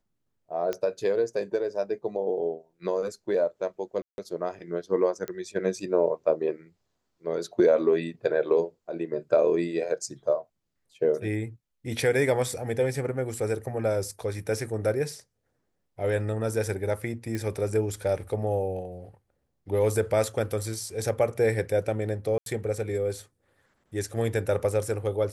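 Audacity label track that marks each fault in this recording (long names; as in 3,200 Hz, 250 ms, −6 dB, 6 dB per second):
0.730000	0.730000	click −17 dBFS
4.020000	4.180000	drop-out 161 ms
5.280000	5.280000	click −19 dBFS
17.350000	17.350000	click −19 dBFS
22.380000	22.460000	drop-out 82 ms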